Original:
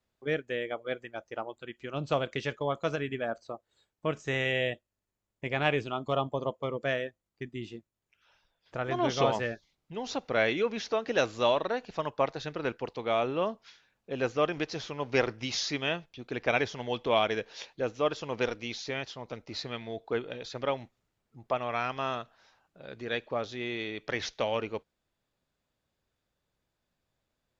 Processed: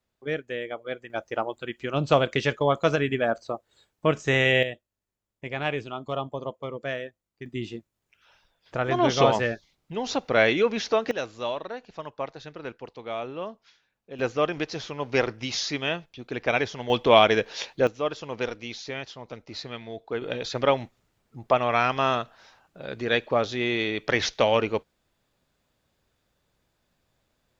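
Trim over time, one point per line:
+1 dB
from 1.10 s +8.5 dB
from 4.63 s -1 dB
from 7.46 s +6.5 dB
from 11.11 s -4.5 dB
from 14.19 s +3 dB
from 16.90 s +9.5 dB
from 17.87 s +0.5 dB
from 20.22 s +9 dB

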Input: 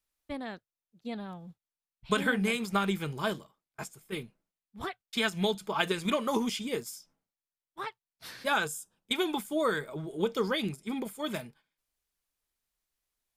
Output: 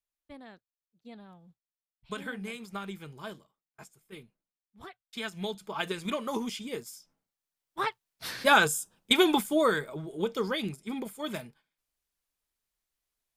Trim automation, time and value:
4.81 s -10 dB
5.92 s -3.5 dB
6.89 s -3.5 dB
7.81 s +7.5 dB
9.33 s +7.5 dB
10.04 s -1 dB

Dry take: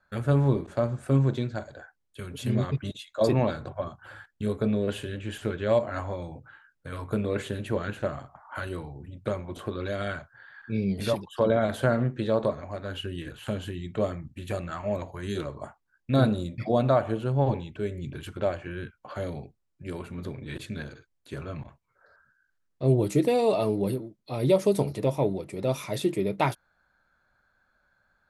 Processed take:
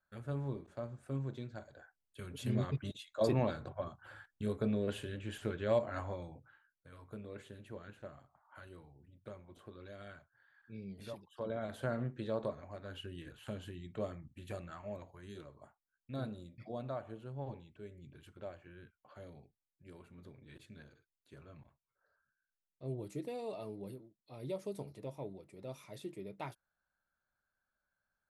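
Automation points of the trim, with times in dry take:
1.26 s -16.5 dB
2.28 s -8 dB
6.12 s -8 dB
6.94 s -19.5 dB
11.21 s -19.5 dB
12.00 s -12 dB
14.53 s -12 dB
15.46 s -19 dB

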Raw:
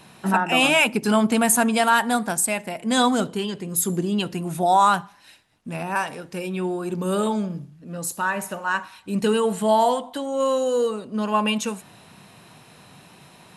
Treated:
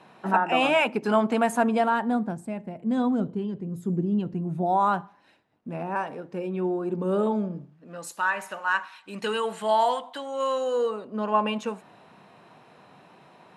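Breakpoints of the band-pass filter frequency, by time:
band-pass filter, Q 0.6
1.47 s 700 Hz
2.41 s 140 Hz
4.51 s 140 Hz
4.95 s 400 Hz
7.51 s 400 Hz
8.10 s 1.7 kHz
10.48 s 1.7 kHz
11.16 s 660 Hz

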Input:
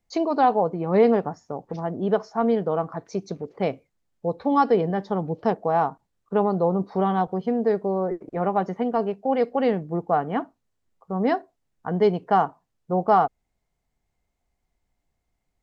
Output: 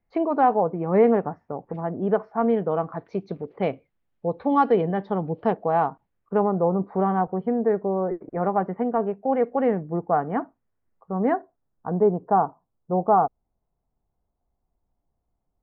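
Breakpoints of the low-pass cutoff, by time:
low-pass 24 dB/octave
2.26 s 2.3 kHz
2.91 s 3.3 kHz
5.87 s 3.3 kHz
6.54 s 2 kHz
11.22 s 2 kHz
11.93 s 1.2 kHz

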